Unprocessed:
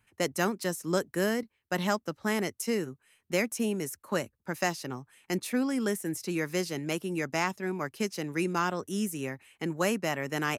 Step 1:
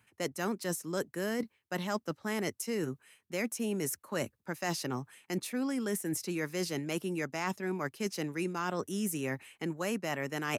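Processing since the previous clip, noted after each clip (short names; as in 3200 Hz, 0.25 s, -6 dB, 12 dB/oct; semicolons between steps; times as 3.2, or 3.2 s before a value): HPF 92 Hz; reverse; compressor 6:1, threshold -36 dBFS, peak gain reduction 13.5 dB; reverse; gain +5 dB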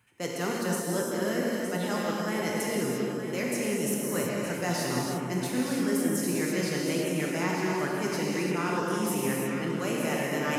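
echo with dull and thin repeats by turns 0.458 s, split 1000 Hz, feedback 59%, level -4.5 dB; non-linear reverb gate 0.37 s flat, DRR -3.5 dB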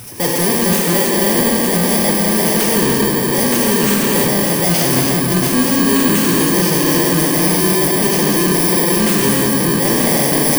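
FFT order left unsorted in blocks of 32 samples; power-law curve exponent 0.5; gain +8.5 dB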